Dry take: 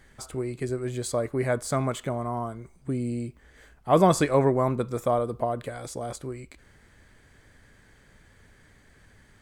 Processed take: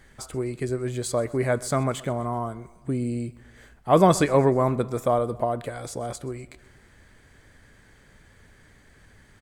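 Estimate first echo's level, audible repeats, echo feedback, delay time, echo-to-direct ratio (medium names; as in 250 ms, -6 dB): -21.5 dB, 3, 56%, 127 ms, -20.0 dB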